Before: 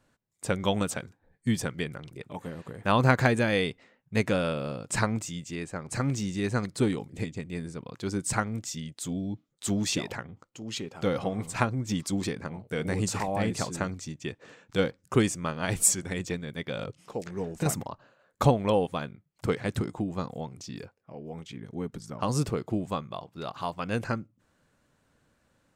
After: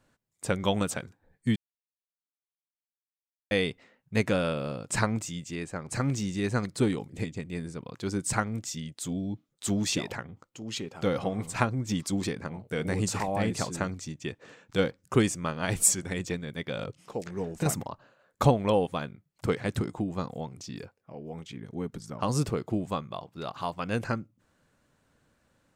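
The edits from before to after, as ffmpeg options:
ffmpeg -i in.wav -filter_complex "[0:a]asplit=3[link_01][link_02][link_03];[link_01]atrim=end=1.56,asetpts=PTS-STARTPTS,afade=type=out:start_time=1.556:duration=0.004:curve=hsin[link_04];[link_02]atrim=start=1.56:end=3.51,asetpts=PTS-STARTPTS,volume=0[link_05];[link_03]atrim=start=3.51,asetpts=PTS-STARTPTS,afade=type=in:duration=0.004:curve=hsin[link_06];[link_04][link_05][link_06]concat=n=3:v=0:a=1" out.wav

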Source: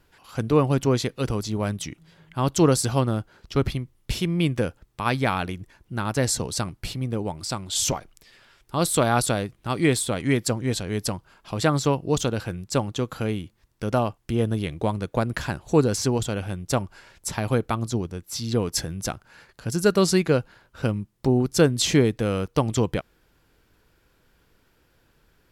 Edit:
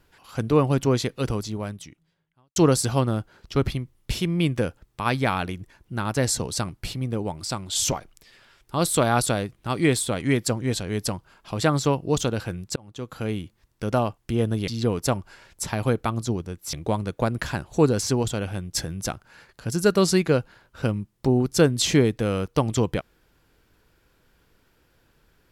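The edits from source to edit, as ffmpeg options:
ffmpeg -i in.wav -filter_complex "[0:a]asplit=7[link_01][link_02][link_03][link_04][link_05][link_06][link_07];[link_01]atrim=end=2.56,asetpts=PTS-STARTPTS,afade=type=out:start_time=1.32:duration=1.24:curve=qua[link_08];[link_02]atrim=start=2.56:end=12.76,asetpts=PTS-STARTPTS,afade=type=in:duration=0.004:curve=hsin,afade=type=out:start_time=10.196:duration=0.004:curve=hsin[link_09];[link_03]atrim=start=12.76:end=14.682,asetpts=PTS-STARTPTS,afade=type=in:duration=0.62[link_10];[link_04]atrim=start=18.378:end=18.762[link_11];[link_05]atrim=start=16.708:end=18.382[link_12];[link_06]atrim=start=14.678:end=16.712[link_13];[link_07]atrim=start=18.758[link_14];[link_08][link_09][link_10]concat=n=3:v=0:a=1[link_15];[link_15][link_11]acrossfade=duration=0.004:curve1=hsin:curve2=hsin[link_16];[link_16][link_12]acrossfade=duration=0.004:curve1=hsin:curve2=hsin[link_17];[link_17][link_13]acrossfade=duration=0.004:curve1=hsin:curve2=hsin[link_18];[link_18][link_14]acrossfade=duration=0.004:curve1=hsin:curve2=hsin" out.wav

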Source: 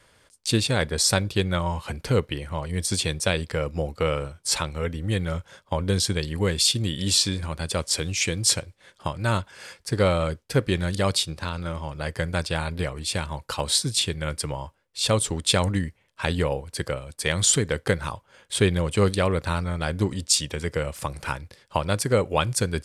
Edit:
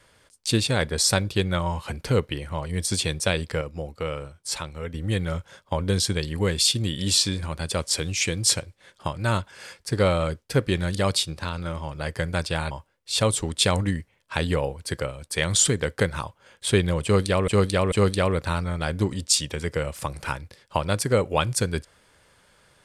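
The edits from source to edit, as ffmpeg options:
ffmpeg -i in.wav -filter_complex "[0:a]asplit=6[link_01][link_02][link_03][link_04][link_05][link_06];[link_01]atrim=end=3.612[link_07];[link_02]atrim=start=3.608:end=4.942,asetpts=PTS-STARTPTS,volume=-5.5dB[link_08];[link_03]atrim=start=4.938:end=12.712[link_09];[link_04]atrim=start=14.588:end=19.362[link_10];[link_05]atrim=start=18.918:end=19.362[link_11];[link_06]atrim=start=18.918[link_12];[link_07][link_08]acrossfade=duration=0.004:curve1=hsin:curve2=hsin[link_13];[link_13][link_09]acrossfade=duration=0.004:curve1=hsin:curve2=hsin[link_14];[link_14][link_10]acrossfade=duration=0.004:curve1=hsin:curve2=hsin[link_15];[link_15][link_11]acrossfade=duration=0.004:curve1=hsin:curve2=hsin[link_16];[link_16][link_12]acrossfade=duration=0.004:curve1=hsin:curve2=hsin" out.wav

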